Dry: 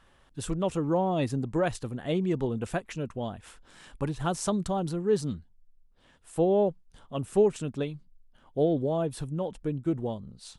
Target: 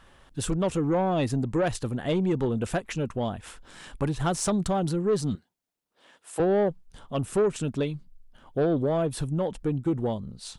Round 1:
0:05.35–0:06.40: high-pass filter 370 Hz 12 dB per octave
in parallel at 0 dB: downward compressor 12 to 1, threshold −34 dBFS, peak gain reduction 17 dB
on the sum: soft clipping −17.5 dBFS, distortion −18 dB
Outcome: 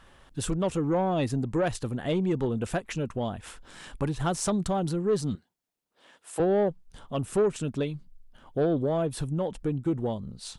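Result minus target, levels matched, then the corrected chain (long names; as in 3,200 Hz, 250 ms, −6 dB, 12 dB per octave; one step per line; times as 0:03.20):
downward compressor: peak gain reduction +6.5 dB
0:05.35–0:06.40: high-pass filter 370 Hz 12 dB per octave
in parallel at 0 dB: downward compressor 12 to 1, threshold −27 dBFS, peak gain reduction 10.5 dB
on the sum: soft clipping −17.5 dBFS, distortion −16 dB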